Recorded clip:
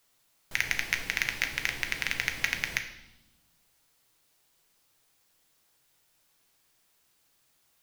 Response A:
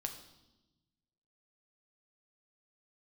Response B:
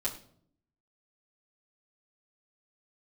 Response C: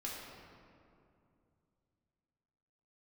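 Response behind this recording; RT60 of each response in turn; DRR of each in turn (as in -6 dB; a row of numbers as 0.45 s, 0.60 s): A; 1.0 s, 0.60 s, 2.6 s; 4.5 dB, -6.5 dB, -5.0 dB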